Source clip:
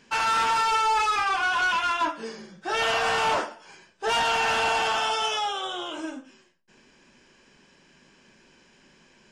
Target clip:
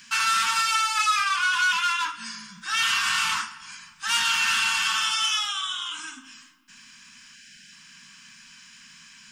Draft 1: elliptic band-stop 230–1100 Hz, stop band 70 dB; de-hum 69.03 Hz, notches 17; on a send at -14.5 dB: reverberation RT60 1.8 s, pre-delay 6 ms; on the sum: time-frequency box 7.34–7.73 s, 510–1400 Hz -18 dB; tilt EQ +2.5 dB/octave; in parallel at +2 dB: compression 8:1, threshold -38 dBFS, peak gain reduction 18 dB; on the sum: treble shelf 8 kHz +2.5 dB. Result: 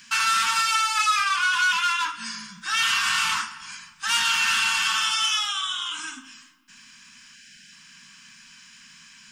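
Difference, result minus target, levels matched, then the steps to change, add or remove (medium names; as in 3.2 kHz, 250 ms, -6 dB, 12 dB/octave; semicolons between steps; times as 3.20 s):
compression: peak gain reduction -8.5 dB
change: compression 8:1, threshold -47.5 dBFS, peak gain reduction 26 dB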